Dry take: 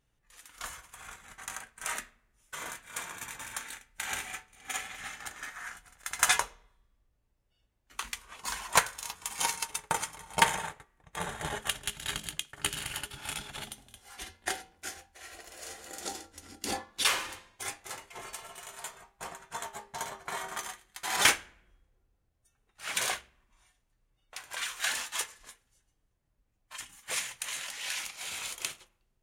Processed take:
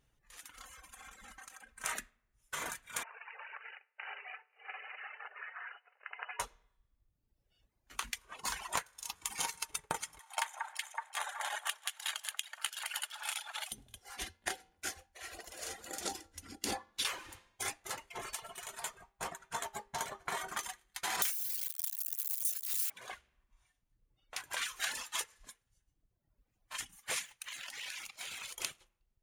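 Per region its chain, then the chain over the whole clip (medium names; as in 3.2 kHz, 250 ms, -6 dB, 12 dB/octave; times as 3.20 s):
0.57–1.84 s: compression 10:1, threshold -51 dBFS + comb 3.8 ms, depth 82%
3.03–6.40 s: compression 5:1, threshold -41 dBFS + brick-wall FIR band-pass 390–3000 Hz
10.19–13.72 s: inverse Chebyshev high-pass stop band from 350 Hz + echo whose repeats swap between lows and highs 187 ms, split 1.9 kHz, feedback 61%, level -6.5 dB
21.22–22.90 s: zero-crossing glitches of -16.5 dBFS + high-pass 150 Hz + tilt EQ +4 dB/octave
27.25–28.58 s: companding laws mixed up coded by A + dynamic bell 2.3 kHz, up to +4 dB, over -48 dBFS, Q 0.71 + compression 10:1, threshold -39 dBFS
whole clip: reverb removal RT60 1.1 s; band-stop 8 kHz, Q 20; compression 8:1, threshold -35 dBFS; trim +2 dB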